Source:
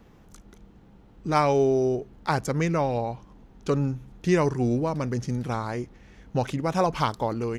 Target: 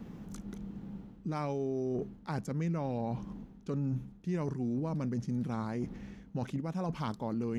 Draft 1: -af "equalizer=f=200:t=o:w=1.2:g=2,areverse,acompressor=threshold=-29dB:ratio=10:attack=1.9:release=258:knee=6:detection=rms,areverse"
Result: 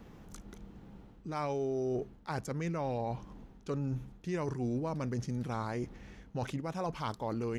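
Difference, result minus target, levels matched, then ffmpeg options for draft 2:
250 Hz band -3.0 dB
-af "equalizer=f=200:t=o:w=1.2:g=13,areverse,acompressor=threshold=-29dB:ratio=10:attack=1.9:release=258:knee=6:detection=rms,areverse"

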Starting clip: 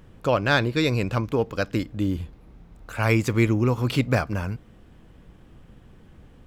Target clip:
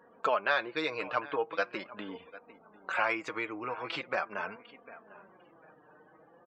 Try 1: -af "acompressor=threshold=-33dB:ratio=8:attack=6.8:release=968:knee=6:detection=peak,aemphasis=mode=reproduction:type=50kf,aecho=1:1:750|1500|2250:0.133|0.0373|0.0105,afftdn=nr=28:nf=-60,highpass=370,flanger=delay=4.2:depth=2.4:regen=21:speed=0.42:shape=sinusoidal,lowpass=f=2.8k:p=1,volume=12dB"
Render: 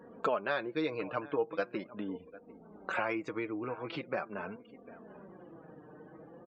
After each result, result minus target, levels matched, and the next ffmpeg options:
compressor: peak gain reduction +7 dB; 500 Hz band +3.0 dB
-af "acompressor=threshold=-25dB:ratio=8:attack=6.8:release=968:knee=6:detection=peak,aemphasis=mode=reproduction:type=50kf,aecho=1:1:750|1500|2250:0.133|0.0373|0.0105,afftdn=nr=28:nf=-60,highpass=370,flanger=delay=4.2:depth=2.4:regen=21:speed=0.42:shape=sinusoidal,lowpass=f=2.8k:p=1,volume=12dB"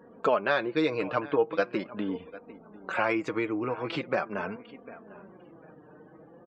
500 Hz band +3.0 dB
-af "acompressor=threshold=-25dB:ratio=8:attack=6.8:release=968:knee=6:detection=peak,aemphasis=mode=reproduction:type=50kf,aecho=1:1:750|1500|2250:0.133|0.0373|0.0105,afftdn=nr=28:nf=-60,highpass=770,flanger=delay=4.2:depth=2.4:regen=21:speed=0.42:shape=sinusoidal,lowpass=f=2.8k:p=1,volume=12dB"

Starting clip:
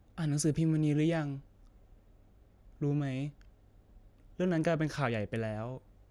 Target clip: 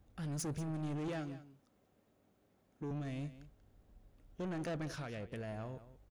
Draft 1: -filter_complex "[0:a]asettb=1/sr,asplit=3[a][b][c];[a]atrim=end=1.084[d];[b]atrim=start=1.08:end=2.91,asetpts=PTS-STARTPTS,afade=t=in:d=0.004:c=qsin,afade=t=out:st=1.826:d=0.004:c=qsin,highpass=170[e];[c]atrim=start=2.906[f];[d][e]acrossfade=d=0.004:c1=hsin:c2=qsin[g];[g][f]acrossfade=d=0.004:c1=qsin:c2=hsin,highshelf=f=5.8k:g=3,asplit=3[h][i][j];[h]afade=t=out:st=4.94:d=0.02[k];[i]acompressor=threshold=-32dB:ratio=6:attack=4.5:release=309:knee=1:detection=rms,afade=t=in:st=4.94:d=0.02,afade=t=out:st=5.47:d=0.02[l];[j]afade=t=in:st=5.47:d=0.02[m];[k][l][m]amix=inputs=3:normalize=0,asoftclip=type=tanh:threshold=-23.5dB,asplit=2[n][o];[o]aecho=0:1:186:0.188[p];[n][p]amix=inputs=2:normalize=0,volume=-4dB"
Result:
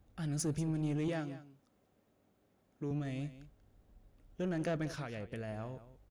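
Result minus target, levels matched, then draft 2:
soft clip: distortion -9 dB
-filter_complex "[0:a]asettb=1/sr,asplit=3[a][b][c];[a]atrim=end=1.084[d];[b]atrim=start=1.08:end=2.91,asetpts=PTS-STARTPTS,afade=t=in:d=0.004:c=qsin,afade=t=out:st=1.826:d=0.004:c=qsin,highpass=170[e];[c]atrim=start=2.906[f];[d][e]acrossfade=d=0.004:c1=hsin:c2=qsin[g];[g][f]acrossfade=d=0.004:c1=qsin:c2=hsin,highshelf=f=5.8k:g=3,asplit=3[h][i][j];[h]afade=t=out:st=4.94:d=0.02[k];[i]acompressor=threshold=-32dB:ratio=6:attack=4.5:release=309:knee=1:detection=rms,afade=t=in:st=4.94:d=0.02,afade=t=out:st=5.47:d=0.02[l];[j]afade=t=in:st=5.47:d=0.02[m];[k][l][m]amix=inputs=3:normalize=0,asoftclip=type=tanh:threshold=-32dB,asplit=2[n][o];[o]aecho=0:1:186:0.188[p];[n][p]amix=inputs=2:normalize=0,volume=-4dB"

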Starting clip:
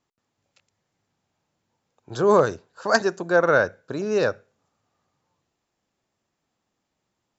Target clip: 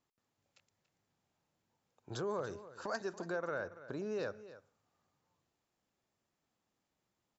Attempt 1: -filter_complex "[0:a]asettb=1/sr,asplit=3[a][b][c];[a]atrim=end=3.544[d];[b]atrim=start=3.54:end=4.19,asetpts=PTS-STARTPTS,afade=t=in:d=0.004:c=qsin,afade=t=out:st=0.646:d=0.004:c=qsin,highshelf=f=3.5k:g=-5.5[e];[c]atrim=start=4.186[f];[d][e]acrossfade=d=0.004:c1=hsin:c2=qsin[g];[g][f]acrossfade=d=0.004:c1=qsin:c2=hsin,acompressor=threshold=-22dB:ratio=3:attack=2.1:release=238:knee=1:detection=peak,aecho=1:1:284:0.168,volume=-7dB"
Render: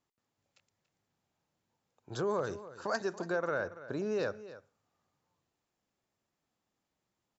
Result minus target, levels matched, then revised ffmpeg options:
compressor: peak gain reduction -5.5 dB
-filter_complex "[0:a]asettb=1/sr,asplit=3[a][b][c];[a]atrim=end=3.544[d];[b]atrim=start=3.54:end=4.19,asetpts=PTS-STARTPTS,afade=t=in:d=0.004:c=qsin,afade=t=out:st=0.646:d=0.004:c=qsin,highshelf=f=3.5k:g=-5.5[e];[c]atrim=start=4.186[f];[d][e]acrossfade=d=0.004:c1=hsin:c2=qsin[g];[g][f]acrossfade=d=0.004:c1=qsin:c2=hsin,acompressor=threshold=-30dB:ratio=3:attack=2.1:release=238:knee=1:detection=peak,aecho=1:1:284:0.168,volume=-7dB"

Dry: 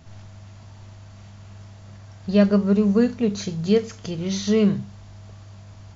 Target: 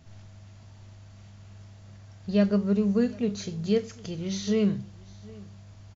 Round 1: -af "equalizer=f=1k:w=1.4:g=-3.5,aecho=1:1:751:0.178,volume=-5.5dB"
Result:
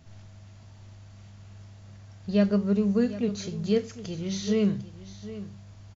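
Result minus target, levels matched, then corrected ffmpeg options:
echo-to-direct +8 dB
-af "equalizer=f=1k:w=1.4:g=-3.5,aecho=1:1:751:0.0708,volume=-5.5dB"

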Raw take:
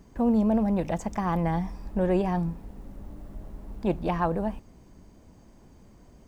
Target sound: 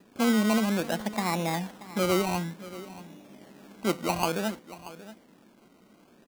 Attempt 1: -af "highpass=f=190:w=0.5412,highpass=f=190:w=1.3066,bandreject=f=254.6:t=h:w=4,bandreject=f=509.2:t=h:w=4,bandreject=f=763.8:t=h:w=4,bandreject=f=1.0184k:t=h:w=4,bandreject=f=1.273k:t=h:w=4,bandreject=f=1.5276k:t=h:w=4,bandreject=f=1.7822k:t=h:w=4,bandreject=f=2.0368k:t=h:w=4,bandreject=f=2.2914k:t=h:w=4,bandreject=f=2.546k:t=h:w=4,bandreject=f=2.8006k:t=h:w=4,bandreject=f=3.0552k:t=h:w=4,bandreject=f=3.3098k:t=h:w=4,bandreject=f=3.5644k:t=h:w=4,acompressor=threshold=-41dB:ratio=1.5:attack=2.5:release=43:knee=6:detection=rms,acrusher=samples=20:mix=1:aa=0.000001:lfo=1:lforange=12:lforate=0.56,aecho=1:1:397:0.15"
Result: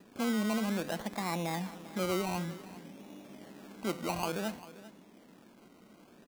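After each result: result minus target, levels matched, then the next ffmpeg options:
compressor: peak gain reduction +8.5 dB; echo 0.235 s early
-af "highpass=f=190:w=0.5412,highpass=f=190:w=1.3066,bandreject=f=254.6:t=h:w=4,bandreject=f=509.2:t=h:w=4,bandreject=f=763.8:t=h:w=4,bandreject=f=1.0184k:t=h:w=4,bandreject=f=1.273k:t=h:w=4,bandreject=f=1.5276k:t=h:w=4,bandreject=f=1.7822k:t=h:w=4,bandreject=f=2.0368k:t=h:w=4,bandreject=f=2.2914k:t=h:w=4,bandreject=f=2.546k:t=h:w=4,bandreject=f=2.8006k:t=h:w=4,bandreject=f=3.0552k:t=h:w=4,bandreject=f=3.3098k:t=h:w=4,bandreject=f=3.5644k:t=h:w=4,acrusher=samples=20:mix=1:aa=0.000001:lfo=1:lforange=12:lforate=0.56,aecho=1:1:397:0.15"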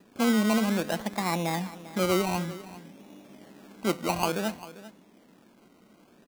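echo 0.235 s early
-af "highpass=f=190:w=0.5412,highpass=f=190:w=1.3066,bandreject=f=254.6:t=h:w=4,bandreject=f=509.2:t=h:w=4,bandreject=f=763.8:t=h:w=4,bandreject=f=1.0184k:t=h:w=4,bandreject=f=1.273k:t=h:w=4,bandreject=f=1.5276k:t=h:w=4,bandreject=f=1.7822k:t=h:w=4,bandreject=f=2.0368k:t=h:w=4,bandreject=f=2.2914k:t=h:w=4,bandreject=f=2.546k:t=h:w=4,bandreject=f=2.8006k:t=h:w=4,bandreject=f=3.0552k:t=h:w=4,bandreject=f=3.3098k:t=h:w=4,bandreject=f=3.5644k:t=h:w=4,acrusher=samples=20:mix=1:aa=0.000001:lfo=1:lforange=12:lforate=0.56,aecho=1:1:632:0.15"

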